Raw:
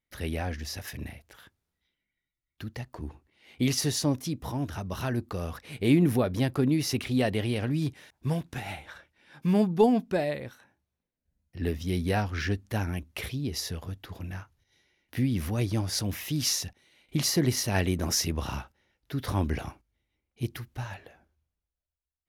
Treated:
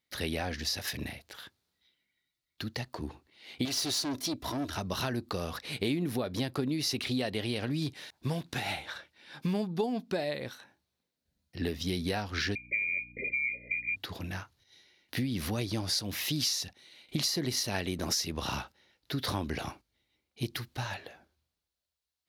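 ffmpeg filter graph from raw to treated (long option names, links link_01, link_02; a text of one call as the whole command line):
ffmpeg -i in.wav -filter_complex "[0:a]asettb=1/sr,asplit=3[link_01][link_02][link_03];[link_01]atrim=end=3.654[link_04];[link_02]atrim=start=3.65:end=4.77,asetpts=PTS-STARTPTS,afade=type=in:duration=0.004:curve=qsin,afade=type=out:start_time=1.116:duration=0.004:curve=qsin,aecho=1:1:3:0.61,atrim=end_sample=49392,aeval=exprs='(tanh(28.2*val(0)+0.55)-tanh(0.55))/28.2':channel_layout=same[link_05];[link_03]atrim=start=4.766[link_06];[link_04][link_05]acrossfade=duration=0.004:curve1=hsin:curve2=qsin[link_07];[link_07][link_06]acrossfade=duration=0.004:curve1=qsin:curve2=hsin,asettb=1/sr,asplit=3[link_08][link_09][link_10];[link_08]atrim=end=12.554[link_11];[link_09]atrim=start=12.55:end=13.96,asetpts=PTS-STARTPTS,afade=type=in:duration=0.004:curve=qsin,afade=type=out:start_time=1.406:duration=0.004:curve=qsin,lowpass=frequency=2100:width_type=q:width=0.5098,lowpass=frequency=2100:width_type=q:width=0.6013,lowpass=frequency=2100:width_type=q:width=0.9,lowpass=frequency=2100:width_type=q:width=2.563,afreqshift=-2500,aeval=exprs='val(0)+0.00282*(sin(2*PI*60*n/s)+sin(2*PI*2*60*n/s)/2+sin(2*PI*3*60*n/s)/3+sin(2*PI*4*60*n/s)/4+sin(2*PI*5*60*n/s)/5)':channel_layout=same,asuperstop=centerf=1100:order=20:qfactor=0.76[link_12];[link_10]atrim=start=13.956[link_13];[link_11][link_12]acrossfade=duration=0.004:curve1=hsin:curve2=qsin[link_14];[link_14][link_13]acrossfade=duration=0.004:curve1=qsin:curve2=hsin,highpass=frequency=170:poles=1,equalizer=frequency=4200:width_type=o:width=0.69:gain=9,acompressor=threshold=-32dB:ratio=6,volume=3.5dB" out.wav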